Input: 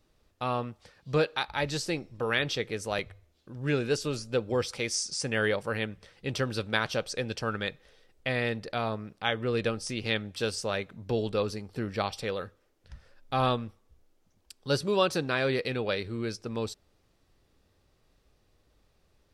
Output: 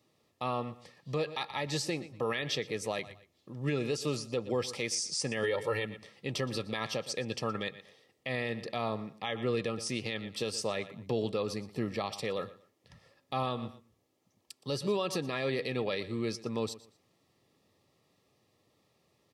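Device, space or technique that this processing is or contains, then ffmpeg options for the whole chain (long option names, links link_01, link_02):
PA system with an anti-feedback notch: -filter_complex "[0:a]asettb=1/sr,asplit=3[link_01][link_02][link_03];[link_01]atrim=end=5.434[link_04];[link_02]atrim=start=5.43:end=5.85,asetpts=PTS-STARTPTS,afade=type=in:duration=0.004:curve=qsin,afade=type=out:start_time=0.416:duration=0.004:curve=qsin,aecho=1:1:2.2:0.71,atrim=end_sample=18522[link_05];[link_03]atrim=start=5.846[link_06];[link_04][link_05]acrossfade=duration=0.004:curve1=hsin:curve2=qsin[link_07];[link_07][link_06]acrossfade=duration=0.004:curve1=qsin:curve2=hsin,highpass=frequency=110:width=0.5412,highpass=frequency=110:width=1.3066,asuperstop=centerf=1500:order=20:qfactor=6.1,aecho=1:1:118|236:0.119|0.0309,alimiter=limit=-21.5dB:level=0:latency=1:release=121"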